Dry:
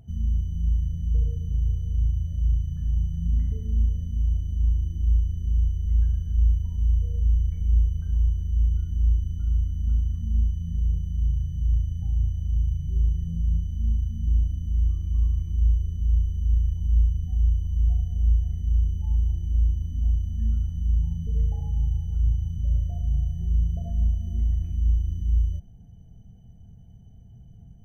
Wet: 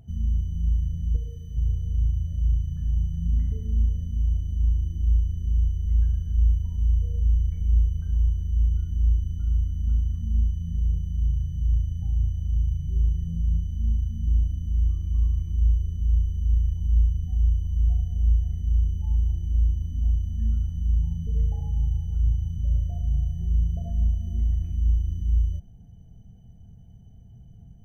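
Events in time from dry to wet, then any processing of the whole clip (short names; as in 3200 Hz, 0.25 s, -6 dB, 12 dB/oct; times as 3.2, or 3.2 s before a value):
1.16–1.57 low shelf 330 Hz -9 dB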